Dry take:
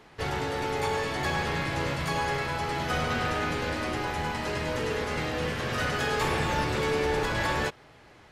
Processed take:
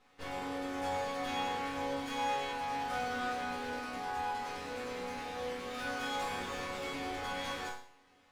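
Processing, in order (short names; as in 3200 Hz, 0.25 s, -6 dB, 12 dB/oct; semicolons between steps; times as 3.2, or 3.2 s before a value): minimum comb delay 3.9 ms; resonator bank F#2 sus4, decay 0.55 s; gain +5.5 dB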